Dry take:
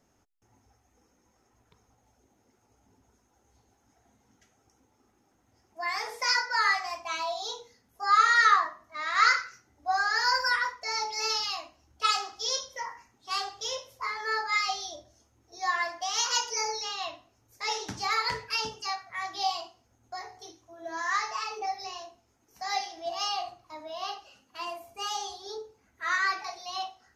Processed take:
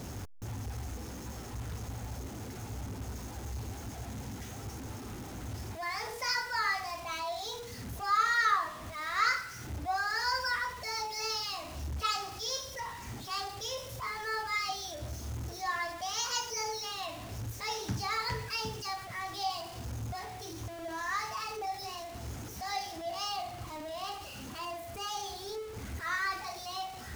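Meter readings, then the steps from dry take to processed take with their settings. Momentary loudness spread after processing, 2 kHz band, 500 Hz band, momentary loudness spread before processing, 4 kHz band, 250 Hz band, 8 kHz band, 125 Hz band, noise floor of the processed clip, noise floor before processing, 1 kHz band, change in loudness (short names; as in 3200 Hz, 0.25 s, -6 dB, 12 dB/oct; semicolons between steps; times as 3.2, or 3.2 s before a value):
12 LU, -6.0 dB, -1.5 dB, 16 LU, -5.5 dB, +8.5 dB, -4.0 dB, +17.5 dB, -45 dBFS, -70 dBFS, -5.5 dB, -6.5 dB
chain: zero-crossing step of -34 dBFS; bell 85 Hz +14 dB 2.6 oct; gain -7.5 dB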